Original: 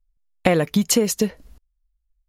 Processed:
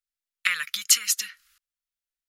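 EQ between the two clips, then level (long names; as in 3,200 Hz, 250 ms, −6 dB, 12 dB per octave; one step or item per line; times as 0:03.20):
elliptic high-pass filter 1,300 Hz, stop band 40 dB
+3.0 dB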